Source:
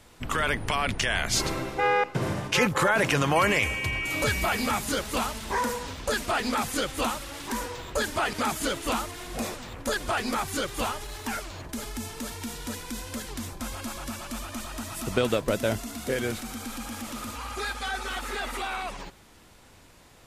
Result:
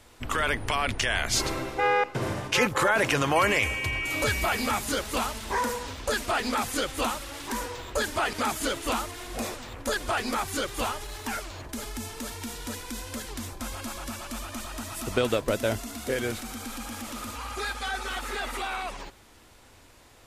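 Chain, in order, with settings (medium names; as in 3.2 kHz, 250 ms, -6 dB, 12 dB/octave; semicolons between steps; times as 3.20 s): peaking EQ 170 Hz -8.5 dB 0.46 oct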